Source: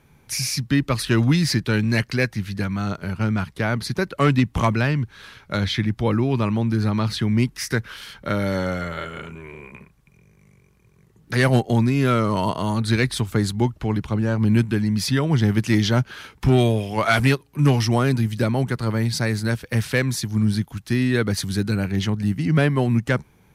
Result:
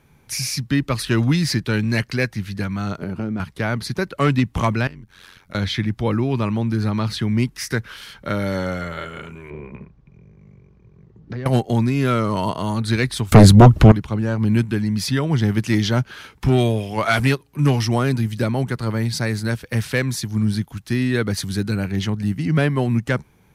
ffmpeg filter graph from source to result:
ffmpeg -i in.wav -filter_complex "[0:a]asettb=1/sr,asplit=3[link_01][link_02][link_03];[link_01]atrim=end=2.994[link_04];[link_02]atrim=start=2.99:end=3.4,asetpts=PTS-STARTPTS,afade=type=in:duration=0.004:curve=qsin,afade=type=out:start_time=0.406:duration=0.004:curve=qsin,equalizer=frequency=320:width=0.55:gain=14.5,acompressor=threshold=-24dB:ratio=4:attack=3.2:release=140:knee=1:detection=peak[link_05];[link_03]atrim=start=3.396[link_06];[link_04][link_05]acrossfade=duration=0.004:curve1=hsin:curve2=qsin[link_07];[link_07][link_06]acrossfade=duration=0.004:curve1=qsin:curve2=hsin,asettb=1/sr,asplit=3[link_08][link_09][link_10];[link_08]atrim=end=4.874[link_11];[link_09]atrim=start=4.87:end=5.55,asetpts=PTS-STARTPTS,afade=type=in:duration=0.004:curve=qsin,afade=type=out:start_time=0.676:duration=0.004:curve=qsin,acompressor=threshold=-34dB:ratio=5:attack=3.2:release=140:knee=1:detection=peak,highshelf=frequency=7300:gain=8.5,tremolo=f=90:d=0.947[link_12];[link_10]atrim=start=5.546[link_13];[link_11][link_12]acrossfade=duration=0.004:curve1=hsin:curve2=qsin[link_14];[link_14][link_13]acrossfade=duration=0.004:curve1=qsin:curve2=hsin,asettb=1/sr,asplit=3[link_15][link_16][link_17];[link_15]atrim=end=9.504[link_18];[link_16]atrim=start=9.5:end=11.46,asetpts=PTS-STARTPTS,afade=type=in:duration=0.004:curve=qsin,afade=type=out:start_time=1.956:duration=0.004:curve=qsin,acompressor=threshold=-31dB:ratio=10:attack=3.2:release=140:knee=1:detection=peak,lowpass=frequency=5800:width=0.5412,lowpass=frequency=5800:width=1.3066,tiltshelf=frequency=1100:gain=8[link_19];[link_17]atrim=start=11.456[link_20];[link_18][link_19]acrossfade=duration=0.004:curve1=hsin:curve2=qsin[link_21];[link_21][link_20]acrossfade=duration=0.004:curve1=qsin:curve2=hsin,asettb=1/sr,asplit=3[link_22][link_23][link_24];[link_22]atrim=end=13.324[link_25];[link_23]atrim=start=13.32:end=13.92,asetpts=PTS-STARTPTS,afade=type=in:duration=0.004:curve=qsin,afade=type=out:start_time=0.596:duration=0.004:curve=qsin,lowshelf=frequency=470:gain=8.5,acompressor=mode=upward:threshold=-22dB:ratio=2.5:attack=3.2:release=140:knee=2.83:detection=peak,aeval=exprs='0.794*sin(PI/2*2.51*val(0)/0.794)':channel_layout=same[link_26];[link_24]atrim=start=13.916[link_27];[link_25][link_26]acrossfade=duration=0.004:curve1=hsin:curve2=qsin[link_28];[link_28][link_27]acrossfade=duration=0.004:curve1=qsin:curve2=hsin" out.wav

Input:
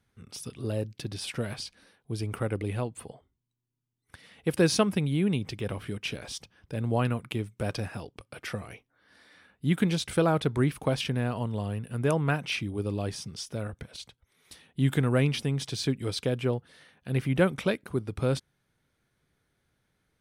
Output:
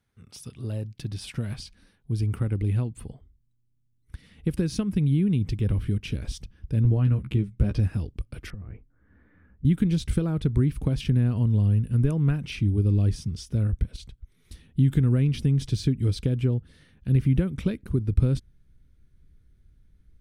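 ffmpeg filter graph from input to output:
ffmpeg -i in.wav -filter_complex "[0:a]asettb=1/sr,asplit=3[link_01][link_02][link_03];[link_01]atrim=end=6.834[link_04];[link_02]atrim=start=6.83:end=7.8,asetpts=PTS-STARTPTS,afade=type=in:duration=0.004:curve=qsin,afade=type=out:start_time=0.966:duration=0.004:curve=qsin,lowpass=frequency=3800:poles=1,asplit=2[link_05][link_06];[link_06]adelay=15,volume=-5dB[link_07];[link_05][link_07]amix=inputs=2:normalize=0,atrim=end_sample=42777[link_08];[link_03]atrim=start=7.796[link_09];[link_04][link_08]acrossfade=duration=0.004:curve1=hsin:curve2=qsin[link_10];[link_10][link_09]acrossfade=duration=0.004:curve1=qsin:curve2=hsin,asettb=1/sr,asplit=3[link_11][link_12][link_13];[link_11]atrim=end=8.504[link_14];[link_12]atrim=start=8.5:end=9.65,asetpts=PTS-STARTPTS,afade=type=in:duration=0.004:curve=qsin,afade=type=out:start_time=1.146:duration=0.004:curve=qsin,lowpass=frequency=1800:width=0.5412,lowpass=frequency=1800:width=1.3066,acompressor=threshold=-44dB:ratio=12:attack=3.2:release=140:knee=1:detection=peak[link_15];[link_13]atrim=start=9.646[link_16];[link_14][link_15]acrossfade=duration=0.004:curve1=hsin:curve2=qsin[link_17];[link_17][link_16]acrossfade=duration=0.004:curve1=qsin:curve2=hsin,asubboost=boost=6:cutoff=50,acompressor=threshold=-28dB:ratio=5,asubboost=boost=10.5:cutoff=220,volume=-3.5dB" out.wav

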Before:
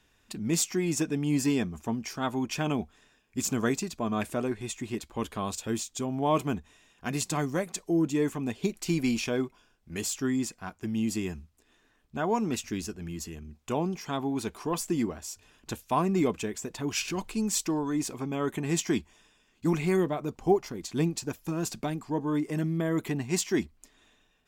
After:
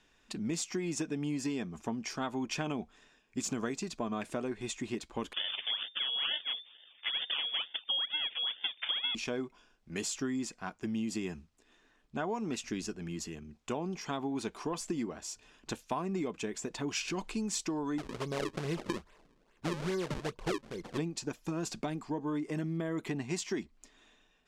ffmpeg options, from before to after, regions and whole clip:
ffmpeg -i in.wav -filter_complex "[0:a]asettb=1/sr,asplit=3[link_01][link_02][link_03];[link_01]atrim=end=5.334[link_04];[link_02]atrim=start=5.33:end=9.15,asetpts=PTS-STARTPTS,afade=type=in:duration=0.004:curve=qsin,afade=type=out:start_time=3.816:duration=0.004:curve=qsin,aecho=1:1:3.3:0.66,atrim=end_sample=168462,acrusher=samples=25:mix=1:aa=0.000001:lfo=1:lforange=25:lforate=2.2,lowpass=frequency=3100:width_type=q:width=0.5098,lowpass=frequency=3100:width_type=q:width=0.6013,lowpass=frequency=3100:width_type=q:width=0.9,lowpass=frequency=3100:width_type=q:width=2.563,afreqshift=-3600[link_05];[link_03]atrim=start=9.146[link_06];[link_04][link_05]acrossfade=duration=0.004:curve1=hsin:curve2=qsin[link_07];[link_07][link_06]acrossfade=duration=0.004:curve1=qsin:curve2=hsin,asettb=1/sr,asplit=3[link_08][link_09][link_10];[link_08]atrim=end=17.984[link_11];[link_09]atrim=start=17.98:end=20.98,asetpts=PTS-STARTPTS,afade=type=in:duration=0.004:curve=qsin,afade=type=out:start_time=2.996:duration=0.004:curve=qsin,equalizer=frequency=7200:width_type=o:width=1.2:gain=-13.5,aecho=1:1:1.9:0.65,atrim=end_sample=132300,acrusher=samples=36:mix=1:aa=0.000001:lfo=1:lforange=57.6:lforate=2.4[link_12];[link_10]atrim=start=20.976[link_13];[link_11][link_12]acrossfade=duration=0.004:curve1=hsin:curve2=qsin[link_14];[link_14][link_13]acrossfade=duration=0.004:curve1=qsin:curve2=hsin,lowpass=7400,equalizer=frequency=84:width=1.4:gain=-11,acompressor=threshold=-31dB:ratio=10" out.wav

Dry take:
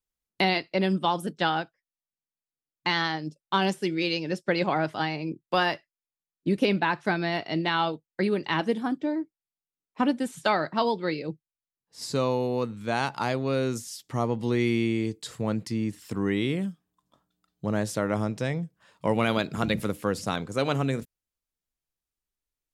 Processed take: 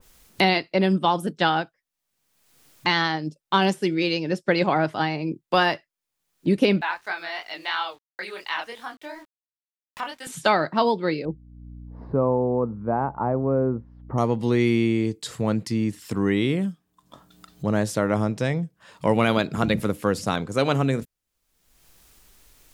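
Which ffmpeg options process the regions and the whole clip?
ffmpeg -i in.wav -filter_complex "[0:a]asettb=1/sr,asplit=3[link_01][link_02][link_03];[link_01]atrim=end=6.814[link_04];[link_02]atrim=start=6.81:end=10.27,asetpts=PTS-STARTPTS,afade=type=in:duration=0.004:curve=qsin,afade=type=out:start_time=3.456:duration=0.004:curve=qsin,highpass=1000,aeval=exprs='val(0)*gte(abs(val(0)),0.00211)':channel_layout=same,flanger=delay=20:depth=6.7:speed=2.9[link_05];[link_03]atrim=start=10.266[link_06];[link_04][link_05]acrossfade=duration=0.004:curve1=hsin:curve2=qsin[link_07];[link_07][link_06]acrossfade=duration=0.004:curve1=qsin:curve2=hsin,asettb=1/sr,asplit=3[link_08][link_09][link_10];[link_08]atrim=end=11.254[link_11];[link_09]atrim=start=11.25:end=14.18,asetpts=PTS-STARTPTS,afade=type=in:duration=0.004:curve=qsin,afade=type=out:start_time=2.926:duration=0.004:curve=qsin,lowpass=frequency=1100:width=0.5412,lowpass=frequency=1100:width=1.3066,aeval=exprs='val(0)+0.00251*(sin(2*PI*60*n/s)+sin(2*PI*2*60*n/s)/2+sin(2*PI*3*60*n/s)/3+sin(2*PI*4*60*n/s)/4+sin(2*PI*5*60*n/s)/5)':channel_layout=same[link_12];[link_10]atrim=start=14.176[link_13];[link_11][link_12]acrossfade=duration=0.004:curve1=hsin:curve2=qsin[link_14];[link_14][link_13]acrossfade=duration=0.004:curve1=qsin:curve2=hsin,acompressor=mode=upward:threshold=-35dB:ratio=2.5,adynamicequalizer=threshold=0.0112:dfrequency=1800:dqfactor=0.7:tfrequency=1800:tqfactor=0.7:attack=5:release=100:ratio=0.375:range=2:mode=cutabove:tftype=highshelf,volume=4.5dB" out.wav

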